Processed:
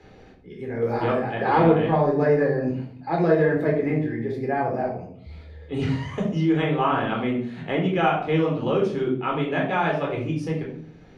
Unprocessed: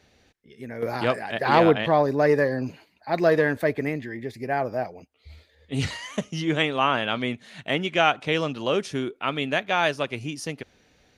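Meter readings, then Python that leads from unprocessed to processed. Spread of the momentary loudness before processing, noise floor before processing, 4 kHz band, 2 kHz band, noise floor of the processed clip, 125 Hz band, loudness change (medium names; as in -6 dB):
13 LU, -62 dBFS, -8.0 dB, -3.5 dB, -48 dBFS, +5.5 dB, +1.0 dB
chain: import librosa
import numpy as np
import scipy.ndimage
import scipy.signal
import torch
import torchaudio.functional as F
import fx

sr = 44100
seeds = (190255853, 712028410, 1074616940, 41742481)

y = fx.lowpass(x, sr, hz=1100.0, slope=6)
y = fx.room_shoebox(y, sr, seeds[0], volume_m3=610.0, walls='furnished', distance_m=4.0)
y = fx.band_squash(y, sr, depth_pct=40)
y = y * 10.0 ** (-3.5 / 20.0)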